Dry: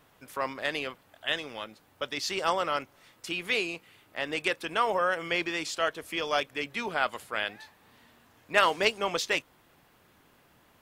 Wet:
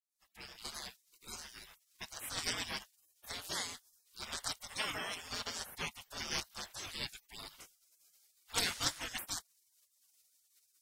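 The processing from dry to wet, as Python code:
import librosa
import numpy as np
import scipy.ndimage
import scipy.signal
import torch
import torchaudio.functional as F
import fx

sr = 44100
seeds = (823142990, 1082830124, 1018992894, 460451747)

y = fx.fade_in_head(x, sr, length_s=0.86)
y = fx.spec_gate(y, sr, threshold_db=-25, keep='weak')
y = F.gain(torch.from_numpy(y), 7.0).numpy()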